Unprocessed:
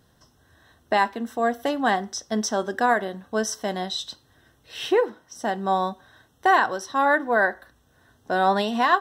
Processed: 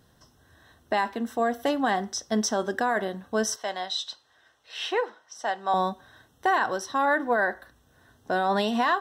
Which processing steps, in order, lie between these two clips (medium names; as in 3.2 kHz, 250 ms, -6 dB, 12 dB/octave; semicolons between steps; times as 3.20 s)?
3.56–5.74 s: three-band isolator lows -19 dB, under 520 Hz, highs -14 dB, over 7.6 kHz; peak limiter -14.5 dBFS, peak gain reduction 7.5 dB